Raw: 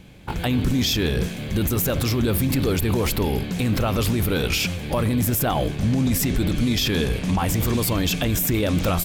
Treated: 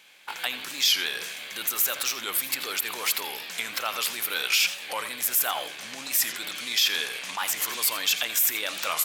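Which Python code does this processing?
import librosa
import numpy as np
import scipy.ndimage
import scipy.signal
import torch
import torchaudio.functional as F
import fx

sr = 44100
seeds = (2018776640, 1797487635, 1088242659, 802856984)

y = scipy.signal.sosfilt(scipy.signal.butter(2, 1300.0, 'highpass', fs=sr, output='sos'), x)
y = y + 10.0 ** (-14.0 / 20.0) * np.pad(y, (int(84 * sr / 1000.0), 0))[:len(y)]
y = fx.record_warp(y, sr, rpm=45.0, depth_cents=160.0)
y = y * librosa.db_to_amplitude(2.0)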